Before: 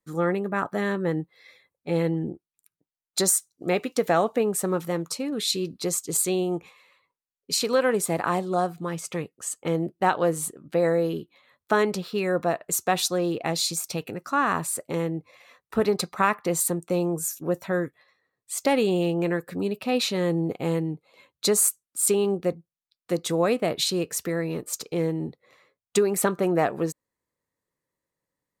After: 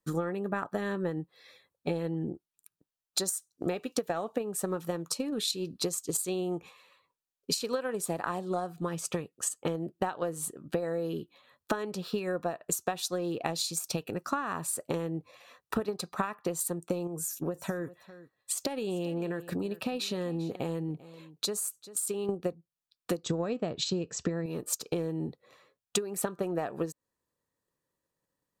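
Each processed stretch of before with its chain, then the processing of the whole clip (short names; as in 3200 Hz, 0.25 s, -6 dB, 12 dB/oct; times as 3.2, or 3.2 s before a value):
17.07–22.29 compressor 2.5:1, threshold -31 dBFS + echo 0.394 s -18.5 dB
23.23–24.46 brick-wall FIR low-pass 8100 Hz + low shelf 280 Hz +10.5 dB
whole clip: notch 2100 Hz, Q 6.1; transient shaper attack +8 dB, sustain 0 dB; compressor 6:1, threshold -29 dBFS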